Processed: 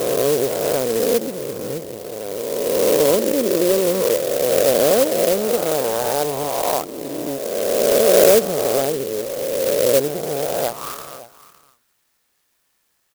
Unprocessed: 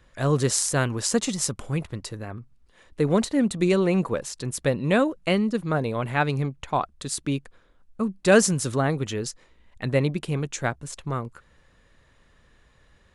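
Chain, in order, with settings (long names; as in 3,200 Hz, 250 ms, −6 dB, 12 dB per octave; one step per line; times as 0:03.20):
peak hold with a rise ahead of every peak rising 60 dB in 2.78 s
in parallel at −2 dB: brickwall limiter −8.5 dBFS, peak gain reduction 10 dB
on the sum: band-pass filter sweep 510 Hz → 6,200 Hz, 0:10.65–0:11.27
single-tap delay 560 ms −17.5 dB
converter with an unsteady clock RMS 0.11 ms
level +2 dB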